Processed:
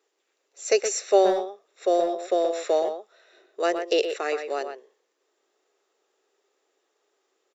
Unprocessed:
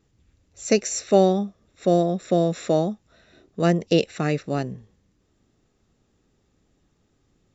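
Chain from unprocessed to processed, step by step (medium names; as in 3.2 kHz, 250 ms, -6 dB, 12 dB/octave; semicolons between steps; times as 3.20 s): elliptic high-pass 390 Hz, stop band 70 dB; speakerphone echo 120 ms, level -7 dB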